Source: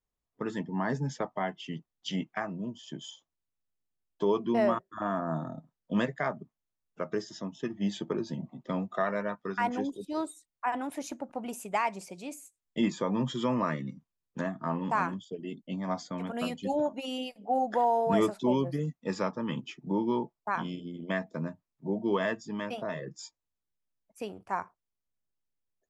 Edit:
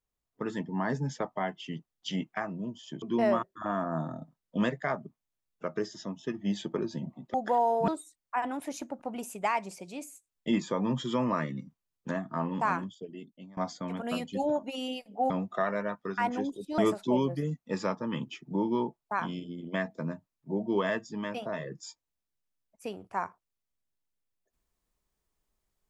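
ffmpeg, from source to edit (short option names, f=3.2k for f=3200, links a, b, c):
-filter_complex "[0:a]asplit=7[a][b][c][d][e][f][g];[a]atrim=end=3.022[h];[b]atrim=start=4.378:end=8.702[i];[c]atrim=start=17.598:end=18.142[j];[d]atrim=start=10.178:end=15.87,asetpts=PTS-STARTPTS,afade=t=out:st=4.892:d=0.8:silence=0.0891251[k];[e]atrim=start=15.87:end=17.602,asetpts=PTS-STARTPTS,afade=t=in:d=0.004:c=hsin:silence=0.0891251[l];[f]atrim=start=8.698:end=10.182[m];[g]atrim=start=18.138[n];[h][i]acrossfade=d=0.004:c1=hsin:c2=hsin[o];[o][j]acrossfade=d=0.004:c1=hsin:c2=hsin[p];[k][l]concat=n=2:v=0:a=1[q];[p][q]acrossfade=d=0.004:c1=hsin:c2=hsin[r];[r][m]acrossfade=d=0.004:c1=hsin:c2=hsin[s];[s][n]acrossfade=d=0.004:c1=hsin:c2=hsin"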